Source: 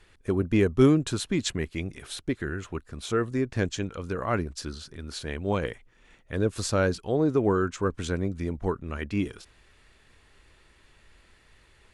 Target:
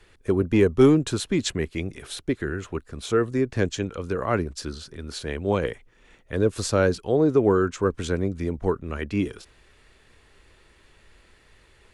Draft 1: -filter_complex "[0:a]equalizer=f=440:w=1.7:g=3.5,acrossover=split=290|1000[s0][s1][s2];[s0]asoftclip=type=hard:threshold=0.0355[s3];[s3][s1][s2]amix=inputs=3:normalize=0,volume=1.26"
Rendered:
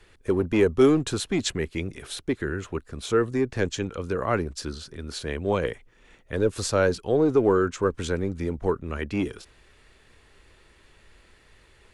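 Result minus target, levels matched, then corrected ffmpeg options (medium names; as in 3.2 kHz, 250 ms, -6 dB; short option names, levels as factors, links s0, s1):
hard clipper: distortion +12 dB
-filter_complex "[0:a]equalizer=f=440:w=1.7:g=3.5,acrossover=split=290|1000[s0][s1][s2];[s0]asoftclip=type=hard:threshold=0.106[s3];[s3][s1][s2]amix=inputs=3:normalize=0,volume=1.26"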